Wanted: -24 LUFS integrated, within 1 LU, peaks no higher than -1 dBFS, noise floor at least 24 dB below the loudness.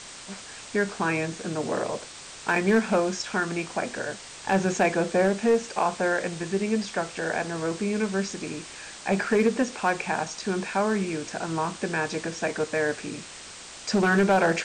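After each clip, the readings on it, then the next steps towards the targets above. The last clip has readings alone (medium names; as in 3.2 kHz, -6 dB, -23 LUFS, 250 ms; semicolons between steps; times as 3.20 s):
clipped samples 0.4%; clipping level -14.0 dBFS; noise floor -43 dBFS; noise floor target -51 dBFS; loudness -26.5 LUFS; peak level -14.0 dBFS; loudness target -24.0 LUFS
-> clip repair -14 dBFS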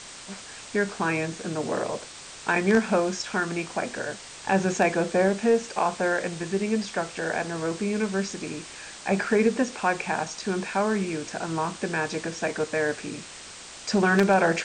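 clipped samples 0.0%; noise floor -43 dBFS; noise floor target -51 dBFS
-> noise print and reduce 8 dB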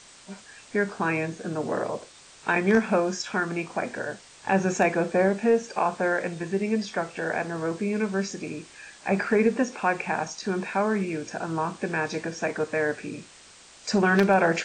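noise floor -51 dBFS; loudness -26.5 LUFS; peak level -5.0 dBFS; loudness target -24.0 LUFS
-> trim +2.5 dB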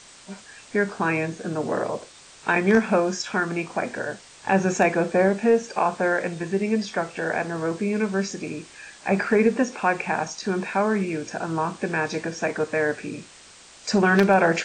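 loudness -24.0 LUFS; peak level -2.5 dBFS; noise floor -48 dBFS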